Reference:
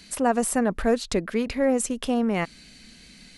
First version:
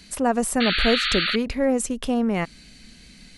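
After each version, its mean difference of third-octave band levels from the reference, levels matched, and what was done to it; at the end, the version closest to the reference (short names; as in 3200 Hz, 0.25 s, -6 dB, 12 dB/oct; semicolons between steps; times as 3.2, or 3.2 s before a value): 2.5 dB: low shelf 130 Hz +6.5 dB; painted sound noise, 0.6–1.36, 1200–4600 Hz -24 dBFS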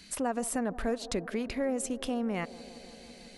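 4.0 dB: compressor 2:1, threshold -27 dBFS, peak gain reduction 6.5 dB; on a send: band-limited delay 0.166 s, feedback 81%, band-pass 480 Hz, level -16 dB; on the sum: gain -4 dB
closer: first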